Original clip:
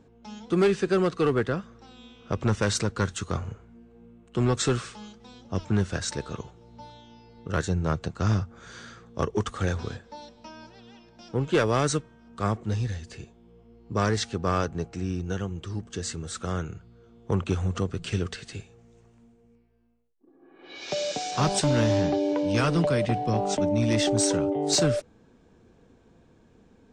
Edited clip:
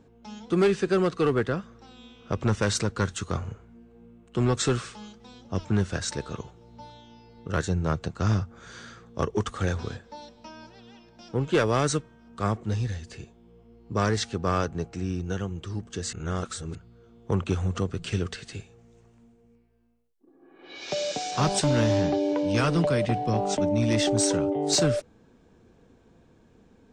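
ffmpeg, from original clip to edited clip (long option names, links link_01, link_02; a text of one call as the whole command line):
ffmpeg -i in.wav -filter_complex "[0:a]asplit=3[link_01][link_02][link_03];[link_01]atrim=end=16.132[link_04];[link_02]atrim=start=16.128:end=16.752,asetpts=PTS-STARTPTS,areverse[link_05];[link_03]atrim=start=16.748[link_06];[link_04][link_05]acrossfade=duration=0.004:curve1=hsin:curve2=hsin[link_07];[link_07][link_06]acrossfade=duration=0.004:curve1=hsin:curve2=hsin" out.wav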